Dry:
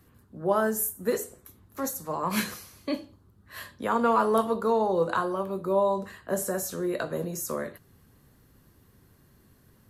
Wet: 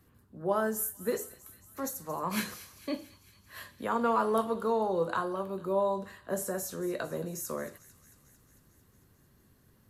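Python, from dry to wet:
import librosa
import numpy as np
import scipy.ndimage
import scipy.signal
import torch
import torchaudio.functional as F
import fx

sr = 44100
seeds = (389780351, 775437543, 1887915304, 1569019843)

y = fx.echo_wet_highpass(x, sr, ms=224, feedback_pct=70, hz=2200.0, wet_db=-16)
y = y * librosa.db_to_amplitude(-4.5)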